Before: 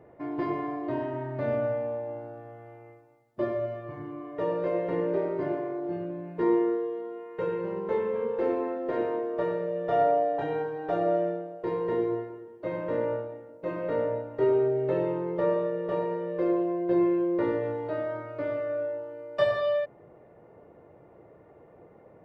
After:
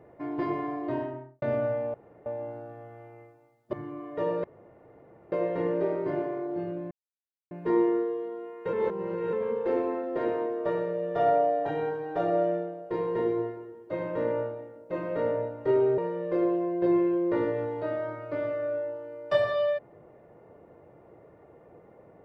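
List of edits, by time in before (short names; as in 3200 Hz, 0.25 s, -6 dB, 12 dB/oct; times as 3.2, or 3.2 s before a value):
0.93–1.42 studio fade out
1.94 insert room tone 0.32 s
3.41–3.94 cut
4.65 insert room tone 0.88 s
6.24 insert silence 0.60 s
7.46–8.06 reverse
14.71–16.05 cut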